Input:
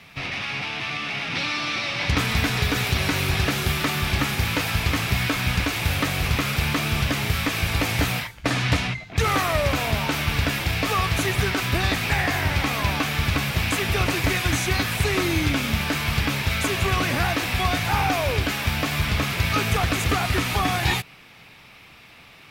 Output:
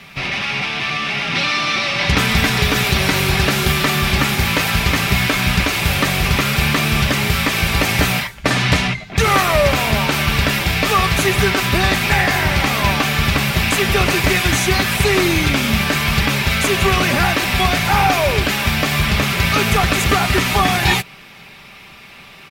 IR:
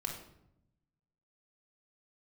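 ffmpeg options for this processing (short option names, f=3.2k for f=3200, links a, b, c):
-af "aecho=1:1:5.1:0.42,volume=7dB"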